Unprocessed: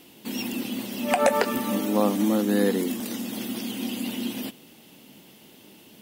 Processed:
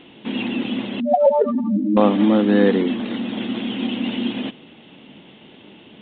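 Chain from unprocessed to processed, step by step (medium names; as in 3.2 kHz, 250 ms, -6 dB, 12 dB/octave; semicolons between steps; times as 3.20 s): 1.00–1.97 s: spectral contrast enhancement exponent 3.9; trim +7 dB; G.726 32 kbps 8 kHz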